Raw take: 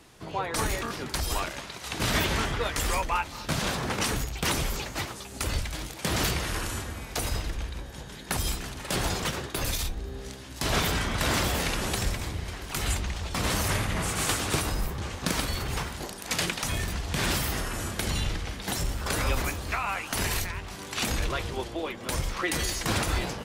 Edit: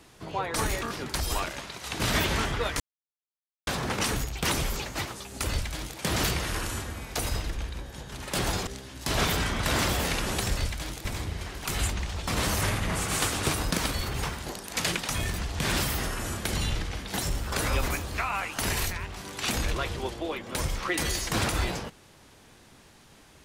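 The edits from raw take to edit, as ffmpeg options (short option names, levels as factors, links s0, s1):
-filter_complex "[0:a]asplit=8[s0][s1][s2][s3][s4][s5][s6][s7];[s0]atrim=end=2.8,asetpts=PTS-STARTPTS,afade=t=out:st=2.796:d=0.004:c=hsin[s8];[s1]atrim=start=2.8:end=3.67,asetpts=PTS-STARTPTS,volume=0[s9];[s2]atrim=start=3.67:end=8.122,asetpts=PTS-STARTPTS,afade=t=in:d=0.004:c=hsin[s10];[s3]atrim=start=8.688:end=9.242[s11];[s4]atrim=start=10.218:end=12.122[s12];[s5]atrim=start=5.498:end=5.982[s13];[s6]atrim=start=12.118:end=14.782[s14];[s7]atrim=start=15.248[s15];[s8][s9][s10]concat=n=3:v=0:a=1[s16];[s16][s11]acrossfade=d=0.004:c1=hsin:c2=hsin[s17];[s17][s12]acrossfade=d=0.004:c1=hsin:c2=hsin[s18];[s18][s13]acrossfade=d=0.004:c1=hsin:c2=hsin[s19];[s19][s14]acrossfade=d=0.004:c1=hsin:c2=hsin[s20];[s20][s15]acrossfade=d=0.004:c1=hsin:c2=hsin"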